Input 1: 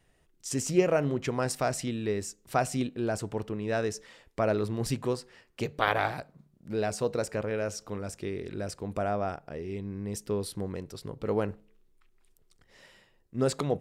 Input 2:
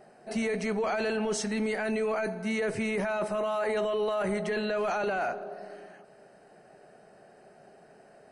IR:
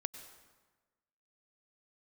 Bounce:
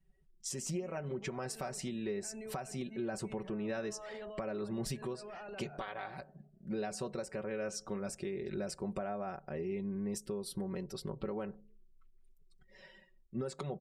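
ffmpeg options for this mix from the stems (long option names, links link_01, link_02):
-filter_complex "[0:a]aecho=1:1:5.3:0.74,acompressor=threshold=-32dB:ratio=4,volume=-2dB,asplit=2[link_01][link_02];[1:a]lowshelf=frequency=200:gain=7,adelay=450,volume=-18dB[link_03];[link_02]apad=whole_len=386352[link_04];[link_03][link_04]sidechaincompress=threshold=-44dB:ratio=8:attack=6:release=112[link_05];[link_01][link_05]amix=inputs=2:normalize=0,afftdn=noise_reduction=19:noise_floor=-59,alimiter=level_in=4.5dB:limit=-24dB:level=0:latency=1:release=360,volume=-4.5dB"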